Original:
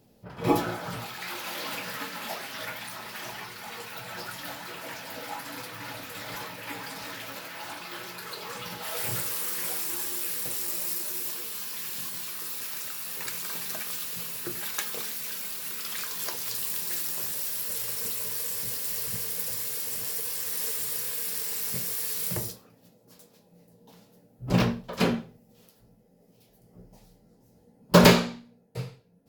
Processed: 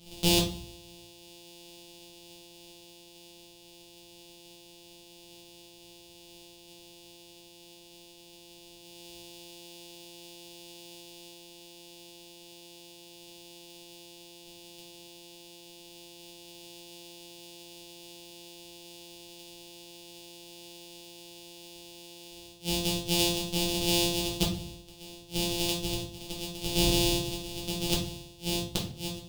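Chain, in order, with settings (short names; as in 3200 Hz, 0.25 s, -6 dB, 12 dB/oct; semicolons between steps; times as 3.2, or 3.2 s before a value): sample sorter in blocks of 256 samples; gate -56 dBFS, range -45 dB; AGC gain up to 4.5 dB; power-law curve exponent 0.5; resonant high shelf 2500 Hz +11.5 dB, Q 3; flipped gate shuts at -2 dBFS, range -35 dB; shoebox room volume 45 m³, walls mixed, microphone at 1 m; gain -7 dB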